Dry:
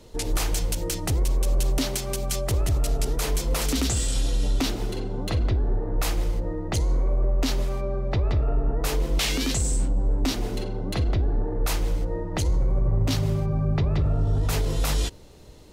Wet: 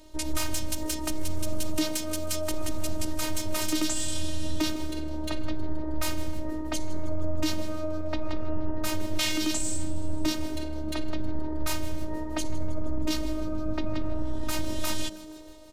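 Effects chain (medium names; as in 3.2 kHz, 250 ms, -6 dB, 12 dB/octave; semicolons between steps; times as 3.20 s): frequency-shifting echo 158 ms, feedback 62%, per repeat +110 Hz, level -18.5 dB; robot voice 310 Hz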